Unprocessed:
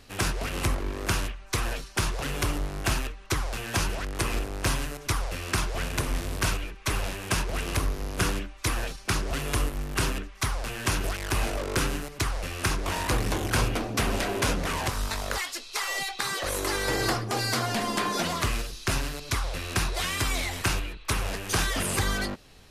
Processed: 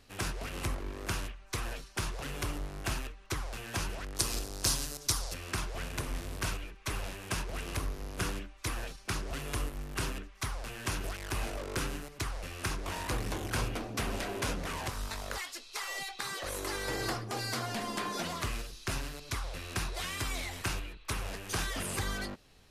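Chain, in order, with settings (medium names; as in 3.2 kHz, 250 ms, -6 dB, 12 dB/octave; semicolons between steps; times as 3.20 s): 4.16–5.34 s: resonant high shelf 3.4 kHz +10 dB, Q 1.5; trim -8 dB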